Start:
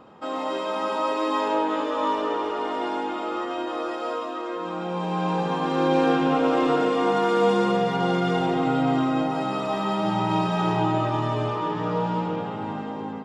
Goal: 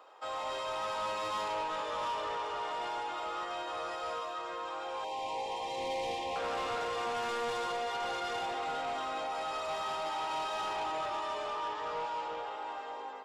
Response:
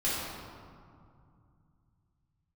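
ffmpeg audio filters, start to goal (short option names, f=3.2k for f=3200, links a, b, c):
-filter_complex "[0:a]bass=f=250:g=-13,treble=f=4k:g=5,acrossover=split=430[a][b];[a]acrusher=bits=2:mix=0:aa=0.5[c];[b]asoftclip=type=tanh:threshold=-27.5dB[d];[c][d]amix=inputs=2:normalize=0,asettb=1/sr,asplit=3[e][f][g];[e]atrim=end=5.044[h];[f]atrim=start=5.04:end=6.36,asetpts=PTS-STARTPTS,afade=t=in:d=0.004:c=qsin,afade=t=out:st=1.316:d=0.004:c=qsin,asuperstop=centerf=1400:order=8:qfactor=1.6[i];[g]atrim=start=6.356[j];[h][i]acrossfade=d=0.004:c1=hsin:c2=qsin[k];[k][j]acrossfade=d=0.004:c1=qsin:c2=hsin,volume=-4dB"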